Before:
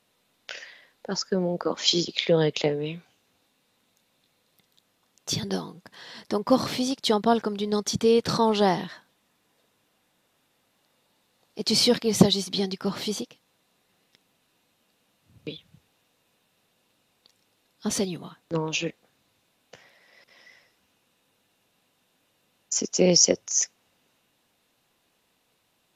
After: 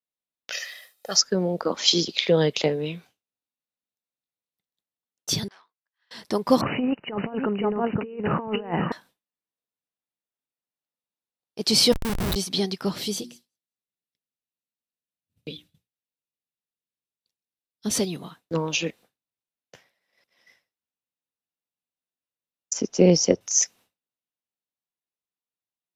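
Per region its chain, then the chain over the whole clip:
0.52–1.21 s: RIAA curve recording + comb 1.6 ms, depth 71%
5.48–6.11 s: hard clipper -32 dBFS + ladder band-pass 1.8 kHz, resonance 25%
6.61–8.92 s: delay 518 ms -7.5 dB + compressor with a negative ratio -26 dBFS, ratio -0.5 + brick-wall FIR low-pass 3 kHz
11.92–12.36 s: level held to a coarse grid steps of 9 dB + Schmitt trigger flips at -25 dBFS
12.92–17.94 s: peaking EQ 1 kHz -8 dB 1.7 oct + hum notches 60/120/180/240/300/360 Hz + feedback echo behind a high-pass 187 ms, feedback 35%, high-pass 4.9 kHz, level -19.5 dB
22.73–23.41 s: low-pass 3.4 kHz 6 dB/octave + tilt EQ -1.5 dB/octave
whole clip: treble shelf 7.6 kHz +6 dB; band-stop 6.8 kHz, Q 18; expander -45 dBFS; trim +1.5 dB

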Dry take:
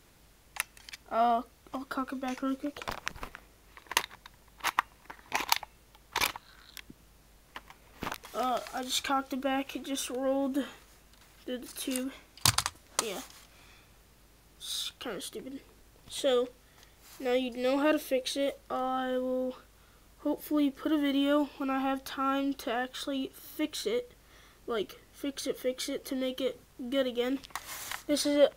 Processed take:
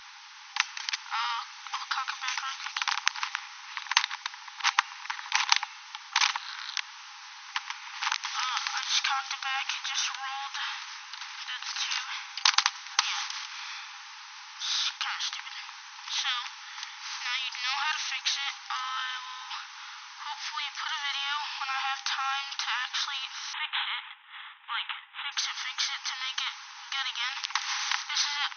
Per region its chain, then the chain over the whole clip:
23.53–25.32 s: expander -51 dBFS + careless resampling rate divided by 6×, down none, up filtered
whole clip: FFT band-pass 800–6300 Hz; level rider gain up to 4 dB; spectrum-flattening compressor 2:1; trim +2.5 dB

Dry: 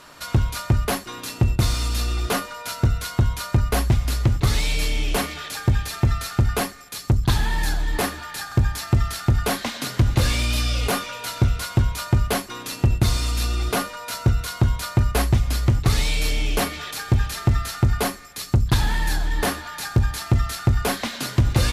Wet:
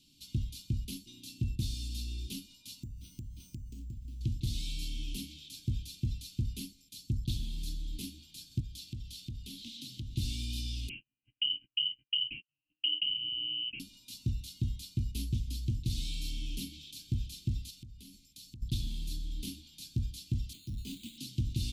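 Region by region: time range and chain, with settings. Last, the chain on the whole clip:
2.83–4.21 s: tilt shelf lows +5.5 dB, about 1.4 kHz + compression 12:1, threshold -25 dBFS + careless resampling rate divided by 6×, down filtered, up hold
8.60–10.17 s: peaking EQ 3.5 kHz +4.5 dB 0.93 oct + compression 2.5:1, threshold -27 dBFS
10.89–13.80 s: gate -27 dBFS, range -37 dB + frequency inversion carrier 3 kHz
17.70–18.62 s: peaking EQ 530 Hz -4 dB 1.6 oct + compression 10:1, threshold -31 dBFS
20.53–21.18 s: careless resampling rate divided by 8×, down none, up hold + hard clipper -20.5 dBFS + three bands expanded up and down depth 40%
whole clip: inverse Chebyshev band-stop 470–1900 Hz, stop band 40 dB; tone controls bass -6 dB, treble -8 dB; trim -8.5 dB

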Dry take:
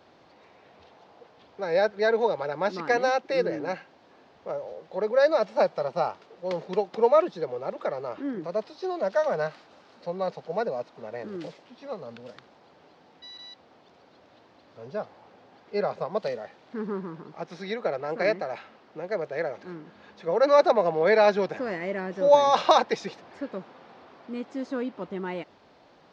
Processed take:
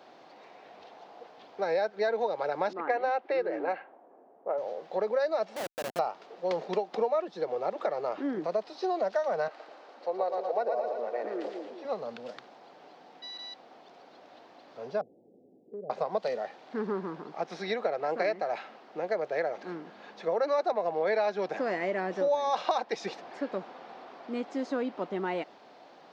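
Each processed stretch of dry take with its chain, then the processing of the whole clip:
2.73–4.58 s: level-controlled noise filter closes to 510 Hz, open at -23 dBFS + band-pass 300–2600 Hz
5.56–5.99 s: high-pass 180 Hz + compression, threshold -31 dBFS + Schmitt trigger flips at -36.5 dBFS
9.48–11.85 s: high-pass 290 Hz 24 dB/octave + treble shelf 2.3 kHz -8.5 dB + two-band feedback delay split 440 Hz, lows 199 ms, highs 115 ms, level -5 dB
15.01–15.90 s: inverse Chebyshev low-pass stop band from 1.1 kHz, stop band 50 dB + compression 5:1, threshold -39 dBFS
whole clip: high-pass 230 Hz 12 dB/octave; peaking EQ 730 Hz +5.5 dB 0.32 oct; compression 5:1, threshold -28 dBFS; trim +2 dB

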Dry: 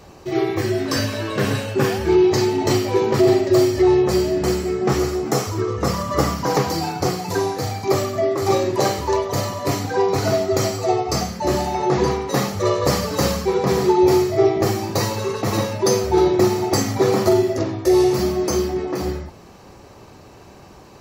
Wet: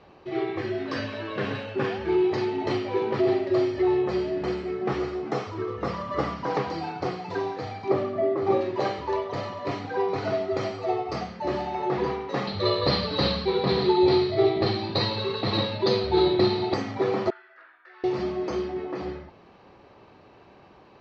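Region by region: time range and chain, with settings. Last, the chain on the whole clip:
7.90–8.61 s: high-pass 170 Hz + tilt EQ -3 dB/octave
12.47–16.74 s: resonant low-pass 4.1 kHz, resonance Q 9.2 + bass shelf 250 Hz +8 dB
17.30–18.04 s: ladder band-pass 1.6 kHz, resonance 80% + distance through air 72 m
whole clip: low-pass 3.8 kHz 24 dB/octave; bass shelf 140 Hz -10 dB; trim -6.5 dB

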